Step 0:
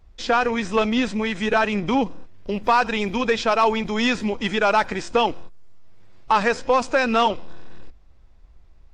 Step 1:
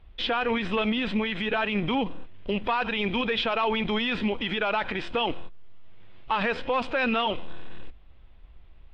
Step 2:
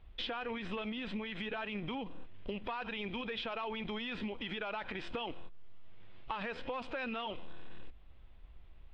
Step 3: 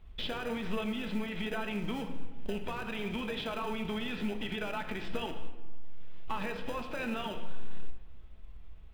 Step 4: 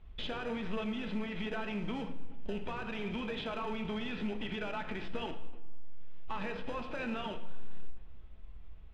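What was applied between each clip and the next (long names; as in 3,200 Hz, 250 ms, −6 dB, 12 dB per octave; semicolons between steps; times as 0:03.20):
high shelf with overshoot 4,600 Hz −13.5 dB, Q 3; brickwall limiter −17.5 dBFS, peak gain reduction 11.5 dB
downward compressor, threshold −32 dBFS, peak gain reduction 10 dB; level −4.5 dB
in parallel at −8 dB: decimation without filtering 40×; on the sum: convolution reverb RT60 1.3 s, pre-delay 5 ms, DRR 4.5 dB
in parallel at −3.5 dB: hard clipping −33 dBFS, distortion −6 dB; on the sum: high-frequency loss of the air 93 metres; level −5 dB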